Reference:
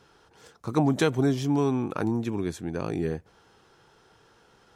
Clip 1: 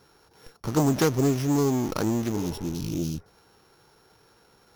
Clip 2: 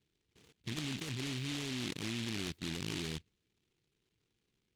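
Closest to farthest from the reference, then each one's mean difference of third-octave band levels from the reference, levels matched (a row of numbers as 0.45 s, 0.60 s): 1, 2; 5.0 dB, 9.5 dB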